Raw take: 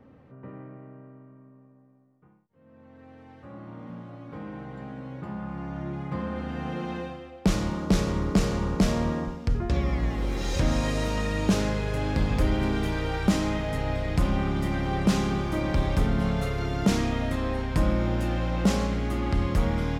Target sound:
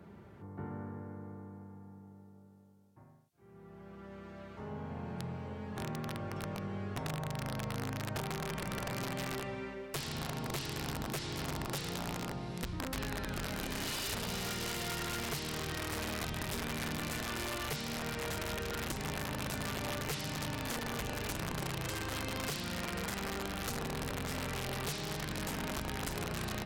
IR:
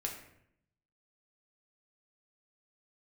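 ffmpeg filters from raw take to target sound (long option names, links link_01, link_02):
-af "highpass=96,highshelf=frequency=2100:gain=11,acompressor=threshold=-34dB:ratio=12,aeval=exprs='(mod(33.5*val(0)+1,2)-1)/33.5':channel_layout=same,asetrate=33075,aresample=44100"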